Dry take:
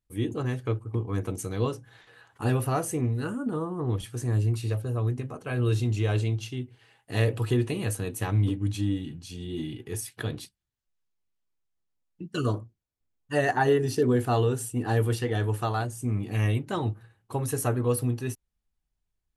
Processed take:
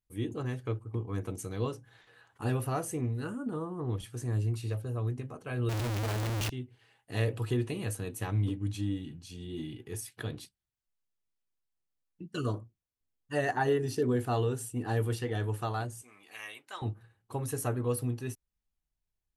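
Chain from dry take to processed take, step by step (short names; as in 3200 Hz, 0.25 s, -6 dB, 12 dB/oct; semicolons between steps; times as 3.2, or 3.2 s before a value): 5.69–6.5 Schmitt trigger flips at -43.5 dBFS; 16.02–16.82 HPF 1100 Hz 12 dB/oct; gain -5.5 dB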